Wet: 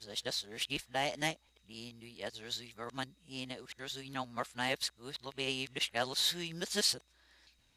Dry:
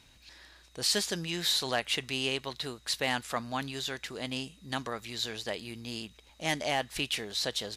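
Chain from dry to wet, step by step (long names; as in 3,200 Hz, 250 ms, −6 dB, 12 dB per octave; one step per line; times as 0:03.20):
played backwards from end to start
expander for the loud parts 1.5 to 1, over −43 dBFS
level −2 dB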